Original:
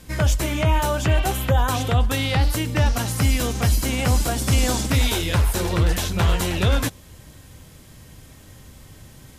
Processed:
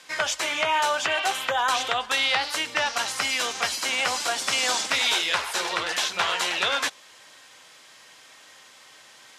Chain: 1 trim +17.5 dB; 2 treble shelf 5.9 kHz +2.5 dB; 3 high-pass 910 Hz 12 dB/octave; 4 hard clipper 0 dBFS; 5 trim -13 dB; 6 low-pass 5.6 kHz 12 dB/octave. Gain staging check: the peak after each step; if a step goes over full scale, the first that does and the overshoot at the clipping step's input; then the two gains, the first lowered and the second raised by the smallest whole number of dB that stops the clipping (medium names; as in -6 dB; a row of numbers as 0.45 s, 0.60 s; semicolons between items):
+8.5 dBFS, +9.0 dBFS, +6.5 dBFS, 0.0 dBFS, -13.0 dBFS, -12.5 dBFS; step 1, 6.5 dB; step 1 +10.5 dB, step 5 -6 dB